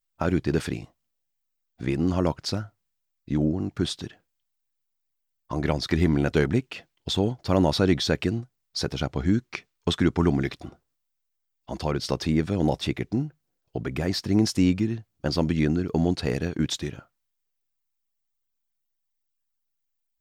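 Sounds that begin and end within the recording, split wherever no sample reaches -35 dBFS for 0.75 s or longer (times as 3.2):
1.81–4.07
5.51–10.69
11.69–16.99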